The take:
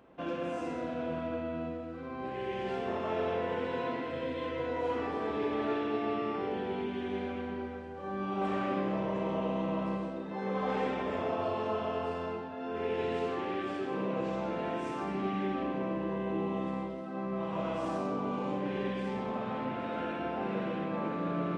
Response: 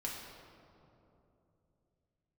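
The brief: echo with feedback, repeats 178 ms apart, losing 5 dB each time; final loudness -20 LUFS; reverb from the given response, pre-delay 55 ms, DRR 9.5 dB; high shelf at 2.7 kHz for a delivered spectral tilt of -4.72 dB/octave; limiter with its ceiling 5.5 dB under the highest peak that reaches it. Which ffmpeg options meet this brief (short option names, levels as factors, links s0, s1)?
-filter_complex "[0:a]highshelf=f=2700:g=5.5,alimiter=level_in=1.19:limit=0.0631:level=0:latency=1,volume=0.841,aecho=1:1:178|356|534|712|890|1068|1246:0.562|0.315|0.176|0.0988|0.0553|0.031|0.0173,asplit=2[s0][s1];[1:a]atrim=start_sample=2205,adelay=55[s2];[s1][s2]afir=irnorm=-1:irlink=0,volume=0.299[s3];[s0][s3]amix=inputs=2:normalize=0,volume=4.22"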